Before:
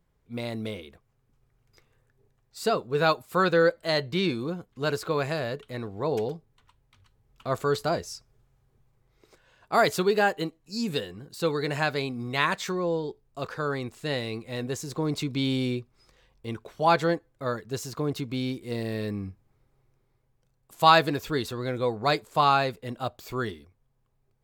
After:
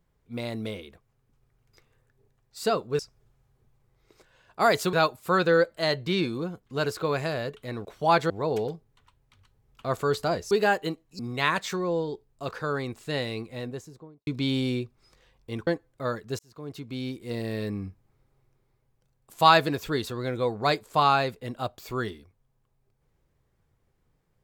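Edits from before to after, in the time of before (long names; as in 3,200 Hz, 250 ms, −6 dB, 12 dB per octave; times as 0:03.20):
0:08.12–0:10.06: move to 0:02.99
0:10.74–0:12.15: remove
0:14.29–0:15.23: fade out and dull
0:16.63–0:17.08: move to 0:05.91
0:17.80–0:19.15: fade in equal-power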